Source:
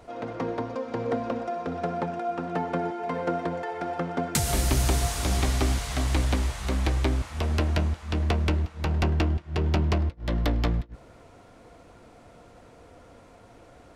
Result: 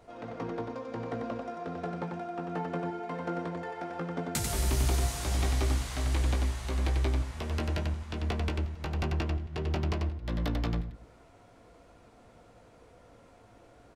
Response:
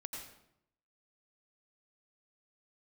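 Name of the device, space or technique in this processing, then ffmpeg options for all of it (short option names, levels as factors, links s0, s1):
slapback doubling: -filter_complex "[0:a]asplit=3[s0][s1][s2];[s1]adelay=18,volume=0.447[s3];[s2]adelay=93,volume=0.596[s4];[s0][s3][s4]amix=inputs=3:normalize=0,volume=0.422"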